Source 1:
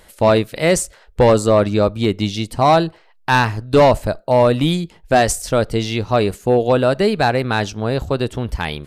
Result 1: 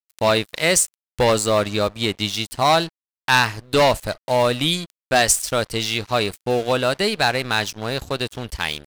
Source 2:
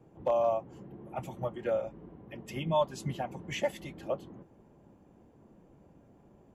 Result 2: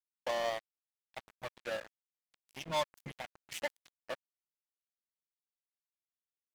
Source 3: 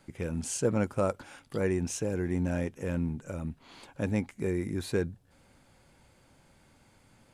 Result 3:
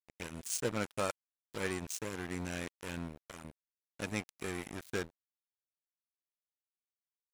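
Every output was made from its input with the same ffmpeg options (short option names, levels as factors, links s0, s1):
-af "aeval=exprs='sgn(val(0))*max(abs(val(0))-0.0188,0)':c=same,tiltshelf=f=1400:g=-7"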